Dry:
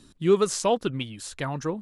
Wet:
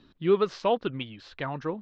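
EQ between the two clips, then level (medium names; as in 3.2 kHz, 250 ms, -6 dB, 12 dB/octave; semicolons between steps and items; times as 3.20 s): low-pass 4.6 kHz 24 dB/octave; distance through air 140 m; bass shelf 260 Hz -6.5 dB; 0.0 dB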